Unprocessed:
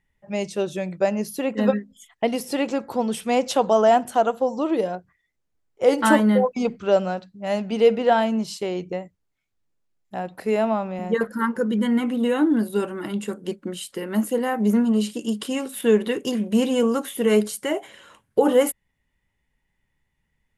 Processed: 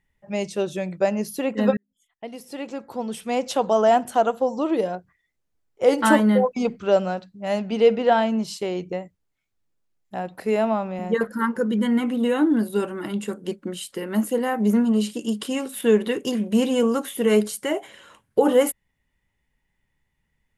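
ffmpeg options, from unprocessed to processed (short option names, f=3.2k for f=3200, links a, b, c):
-filter_complex "[0:a]asettb=1/sr,asplit=3[a][b][c];[a]atrim=end=7.594[d];[b]atrim=start=7.59:end=8.43,asetpts=PTS-STARTPTS,afade=t=in:d=0.004:c=qsin,afade=t=out:st=0.836:d=0.004:c=qsin,lowpass=7.1k[e];[c]atrim=start=8.426[f];[d][e]acrossfade=d=0.004:c1=hsin:c2=qsin[g];[g][f]acrossfade=d=0.004:c1=qsin:c2=hsin,asplit=2[h][i];[h]atrim=end=1.77,asetpts=PTS-STARTPTS,afade=t=out:st=1.766:d=0.004:c=hsin[j];[i]atrim=start=1.77,asetpts=PTS-STARTPTS,afade=t=in:d=2.34[k];[j][k]concat=n=2:v=0:a=1"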